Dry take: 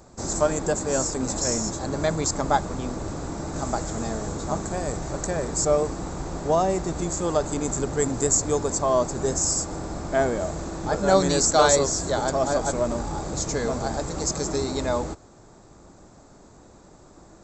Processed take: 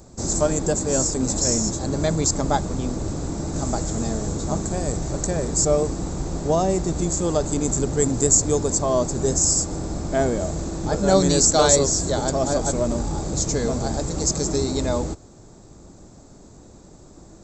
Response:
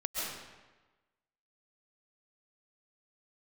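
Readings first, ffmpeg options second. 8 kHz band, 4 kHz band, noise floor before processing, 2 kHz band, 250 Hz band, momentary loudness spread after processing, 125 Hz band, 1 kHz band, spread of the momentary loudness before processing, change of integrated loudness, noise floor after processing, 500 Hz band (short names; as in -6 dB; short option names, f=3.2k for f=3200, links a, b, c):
+5.0 dB, +3.0 dB, -51 dBFS, -2.5 dB, +4.5 dB, 10 LU, +5.5 dB, -1.5 dB, 10 LU, +3.0 dB, -47 dBFS, +1.5 dB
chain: -af "equalizer=f=1.3k:w=0.47:g=-9,volume=6dB"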